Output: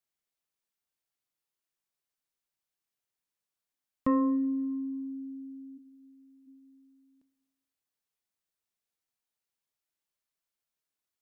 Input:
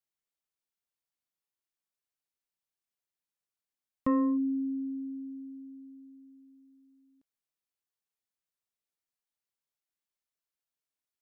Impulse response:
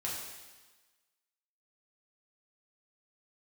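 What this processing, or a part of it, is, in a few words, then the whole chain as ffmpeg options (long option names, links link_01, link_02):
ducked reverb: -filter_complex "[0:a]asplit=3[link_01][link_02][link_03];[link_01]afade=type=out:start_time=5.77:duration=0.02[link_04];[link_02]highpass=290,afade=type=in:start_time=5.77:duration=0.02,afade=type=out:start_time=6.46:duration=0.02[link_05];[link_03]afade=type=in:start_time=6.46:duration=0.02[link_06];[link_04][link_05][link_06]amix=inputs=3:normalize=0,asplit=3[link_07][link_08][link_09];[1:a]atrim=start_sample=2205[link_10];[link_08][link_10]afir=irnorm=-1:irlink=0[link_11];[link_09]apad=whole_len=494750[link_12];[link_11][link_12]sidechaincompress=threshold=-30dB:ratio=8:attack=16:release=155,volume=-11dB[link_13];[link_07][link_13]amix=inputs=2:normalize=0"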